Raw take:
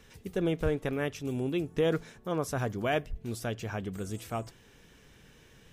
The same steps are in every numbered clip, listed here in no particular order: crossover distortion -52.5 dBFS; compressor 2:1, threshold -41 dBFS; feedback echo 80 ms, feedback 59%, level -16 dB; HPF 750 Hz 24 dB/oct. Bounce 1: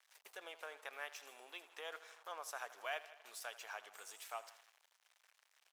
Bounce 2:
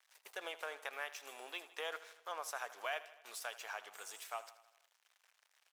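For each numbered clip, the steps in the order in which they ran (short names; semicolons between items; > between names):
feedback echo > crossover distortion > compressor > HPF; crossover distortion > HPF > compressor > feedback echo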